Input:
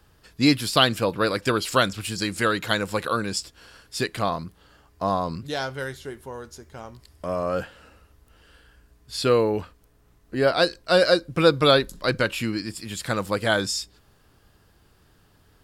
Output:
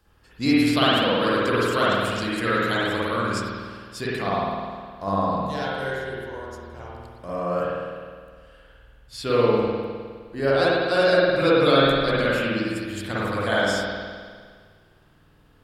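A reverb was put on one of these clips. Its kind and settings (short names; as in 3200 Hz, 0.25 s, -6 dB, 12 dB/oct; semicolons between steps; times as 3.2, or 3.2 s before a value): spring tank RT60 1.8 s, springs 51 ms, chirp 70 ms, DRR -8 dB; gain -7 dB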